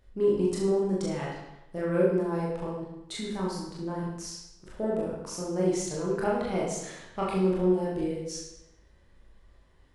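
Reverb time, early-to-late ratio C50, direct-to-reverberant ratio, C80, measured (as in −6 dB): 0.90 s, 1.0 dB, −6.0 dB, 4.0 dB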